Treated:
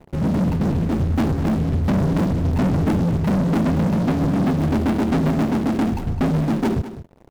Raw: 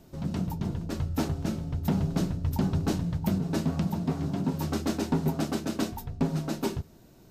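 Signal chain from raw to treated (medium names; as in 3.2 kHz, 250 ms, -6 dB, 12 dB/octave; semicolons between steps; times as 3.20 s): median filter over 41 samples; dynamic bell 240 Hz, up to +6 dB, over -41 dBFS, Q 2; waveshaping leveller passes 5; delay 207 ms -13.5 dB; trim -2.5 dB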